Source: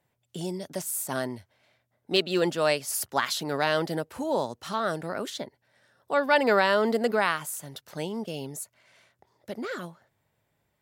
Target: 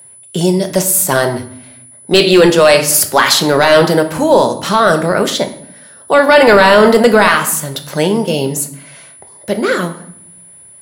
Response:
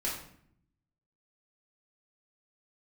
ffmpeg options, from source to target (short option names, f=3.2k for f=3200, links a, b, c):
-filter_complex "[0:a]asplit=2[a][b];[1:a]atrim=start_sample=2205[c];[b][c]afir=irnorm=-1:irlink=0,volume=-9dB[d];[a][d]amix=inputs=2:normalize=0,aeval=exprs='val(0)+0.002*sin(2*PI*10000*n/s)':c=same,apsyclip=18.5dB,volume=-1.5dB"